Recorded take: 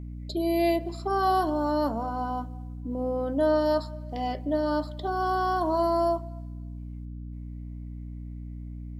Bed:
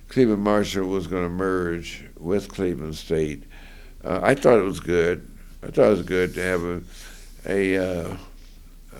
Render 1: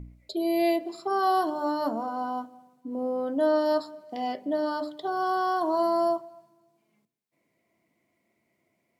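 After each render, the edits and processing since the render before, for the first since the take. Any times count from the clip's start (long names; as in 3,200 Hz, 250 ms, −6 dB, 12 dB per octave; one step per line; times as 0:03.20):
hum removal 60 Hz, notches 10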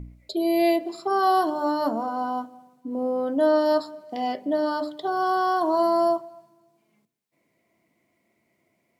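level +3.5 dB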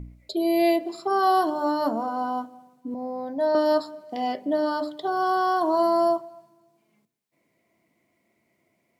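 0:02.94–0:03.55: phaser with its sweep stopped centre 2,000 Hz, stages 8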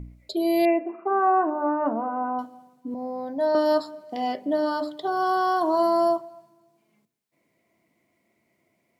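0:00.65–0:02.39: linear-phase brick-wall band-pass 180–2,900 Hz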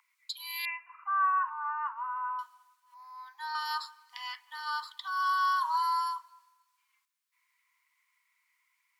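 Butterworth high-pass 950 Hz 96 dB per octave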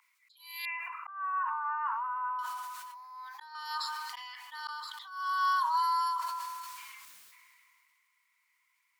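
volume swells 495 ms
level that may fall only so fast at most 22 dB per second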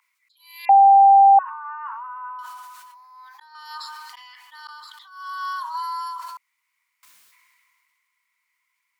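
0:00.69–0:01.39: beep over 789 Hz −8 dBFS
0:04.16–0:05.73: high-pass filter 650 Hz → 840 Hz
0:06.37–0:07.03: fill with room tone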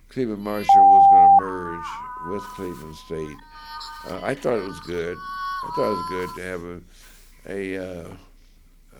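mix in bed −7.5 dB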